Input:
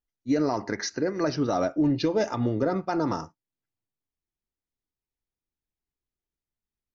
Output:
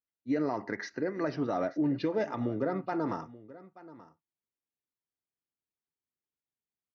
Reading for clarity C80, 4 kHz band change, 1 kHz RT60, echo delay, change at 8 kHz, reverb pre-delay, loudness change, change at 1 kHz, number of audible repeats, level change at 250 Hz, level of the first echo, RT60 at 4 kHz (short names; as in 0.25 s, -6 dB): none, -12.5 dB, none, 0.881 s, n/a, none, -5.5 dB, -5.5 dB, 1, -5.5 dB, -18.5 dB, none